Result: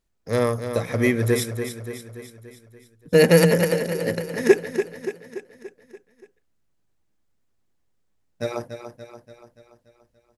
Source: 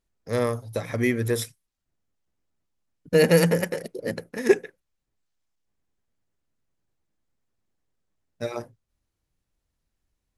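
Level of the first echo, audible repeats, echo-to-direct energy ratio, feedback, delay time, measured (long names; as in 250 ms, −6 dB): −9.0 dB, 6, −7.5 dB, 55%, 288 ms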